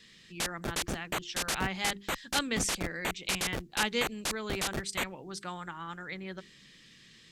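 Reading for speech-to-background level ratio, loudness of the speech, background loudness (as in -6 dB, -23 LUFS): -1.0 dB, -36.0 LUFS, -35.0 LUFS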